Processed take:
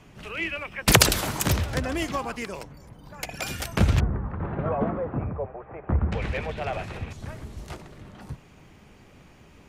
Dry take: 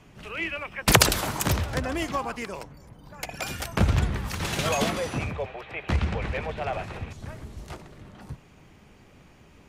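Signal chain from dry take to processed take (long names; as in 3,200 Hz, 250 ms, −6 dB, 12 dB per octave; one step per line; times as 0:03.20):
0:04.00–0:06.12: low-pass filter 1,300 Hz 24 dB per octave
dynamic equaliser 960 Hz, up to −3 dB, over −42 dBFS, Q 1
level +1.5 dB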